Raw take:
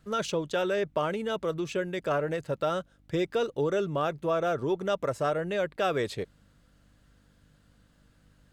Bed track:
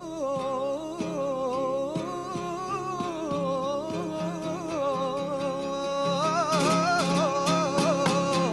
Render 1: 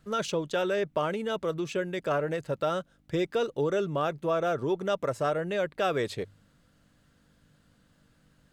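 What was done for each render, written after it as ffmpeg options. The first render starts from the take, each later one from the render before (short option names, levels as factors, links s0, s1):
-af "bandreject=f=50:t=h:w=4,bandreject=f=100:t=h:w=4"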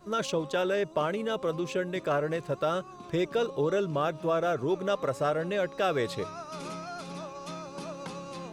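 -filter_complex "[1:a]volume=0.168[s0];[0:a][s0]amix=inputs=2:normalize=0"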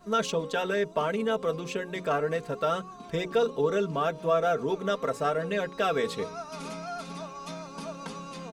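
-af "bandreject=f=60:t=h:w=6,bandreject=f=120:t=h:w=6,bandreject=f=180:t=h:w=6,bandreject=f=240:t=h:w=6,bandreject=f=300:t=h:w=6,bandreject=f=360:t=h:w=6,bandreject=f=420:t=h:w=6,bandreject=f=480:t=h:w=6,aecho=1:1:4.4:0.63"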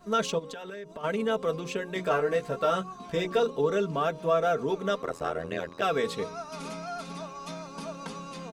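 -filter_complex "[0:a]asplit=3[s0][s1][s2];[s0]afade=t=out:st=0.38:d=0.02[s3];[s1]acompressor=threshold=0.0158:ratio=16:attack=3.2:release=140:knee=1:detection=peak,afade=t=in:st=0.38:d=0.02,afade=t=out:st=1.03:d=0.02[s4];[s2]afade=t=in:st=1.03:d=0.02[s5];[s3][s4][s5]amix=inputs=3:normalize=0,asettb=1/sr,asplit=3[s6][s7][s8];[s6]atrim=end=1.944[s9];[s7]atrim=start=1.94:end=3.4,asetpts=PTS-STARTPTS,afade=t=in:d=0.004:c=qsin,afade=t=out:st=1.456:d=0.004:c=qsin,asplit=2[s10][s11];[s11]adelay=16,volume=0.631[s12];[s10][s12]amix=inputs=2:normalize=0,atrim=end_sample=64386[s13];[s8]atrim=start=3.396[s14];[s9][s13]acrossfade=d=0.004:c1=hsin:c2=qsin[s15];[s15][s14]acrossfade=d=0.004:c1=qsin:c2=hsin,asettb=1/sr,asplit=3[s16][s17][s18];[s16]atrim=end=5.024[s19];[s17]atrim=start=5.02:end=5.82,asetpts=PTS-STARTPTS,afade=t=in:d=0.004:c=qsin,afade=t=out:st=0.796:d=0.004:c=qsin,tremolo=f=84:d=0.974[s20];[s18]atrim=start=5.816[s21];[s19][s20]acrossfade=d=0.004:c1=hsin:c2=qsin[s22];[s22][s21]acrossfade=d=0.004:c1=qsin:c2=hsin"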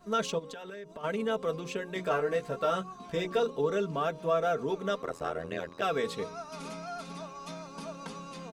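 -af "volume=0.708"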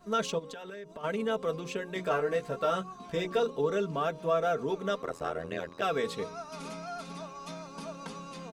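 -af anull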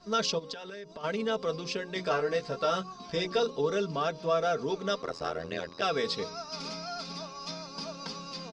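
-af "lowpass=f=5000:t=q:w=6.6"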